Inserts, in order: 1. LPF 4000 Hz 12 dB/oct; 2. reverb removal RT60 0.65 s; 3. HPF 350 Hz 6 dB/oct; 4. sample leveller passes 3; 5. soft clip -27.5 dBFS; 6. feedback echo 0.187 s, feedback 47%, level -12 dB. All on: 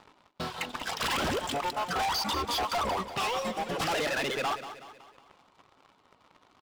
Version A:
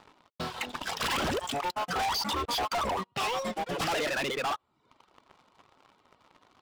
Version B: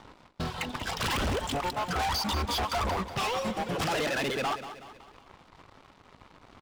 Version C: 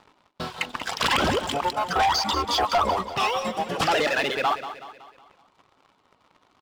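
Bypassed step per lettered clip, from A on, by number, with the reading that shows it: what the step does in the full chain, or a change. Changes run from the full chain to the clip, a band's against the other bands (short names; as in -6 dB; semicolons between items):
6, echo-to-direct -11.0 dB to none; 3, 125 Hz band +7.5 dB; 5, distortion -9 dB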